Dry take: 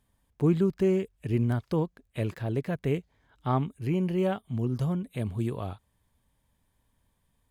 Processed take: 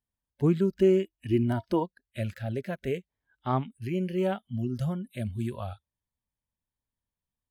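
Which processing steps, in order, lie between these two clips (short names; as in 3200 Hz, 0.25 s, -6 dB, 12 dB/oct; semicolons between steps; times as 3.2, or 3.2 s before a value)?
spectral noise reduction 20 dB; 0.76–1.82 small resonant body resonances 320/670/940/2900 Hz, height 16 dB -> 12 dB, ringing for 80 ms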